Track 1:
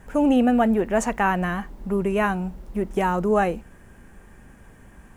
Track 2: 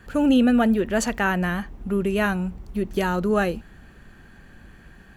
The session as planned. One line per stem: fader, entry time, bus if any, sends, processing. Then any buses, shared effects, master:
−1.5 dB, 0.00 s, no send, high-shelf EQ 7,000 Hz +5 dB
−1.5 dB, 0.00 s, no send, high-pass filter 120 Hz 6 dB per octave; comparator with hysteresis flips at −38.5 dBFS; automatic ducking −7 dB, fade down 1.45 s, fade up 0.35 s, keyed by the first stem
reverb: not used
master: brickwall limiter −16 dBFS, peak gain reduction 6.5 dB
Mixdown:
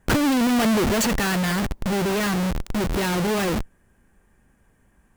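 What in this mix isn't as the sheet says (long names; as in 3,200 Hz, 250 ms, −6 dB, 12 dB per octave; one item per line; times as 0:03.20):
stem 1 −1.5 dB → −12.5 dB
stem 2 −1.5 dB → +8.0 dB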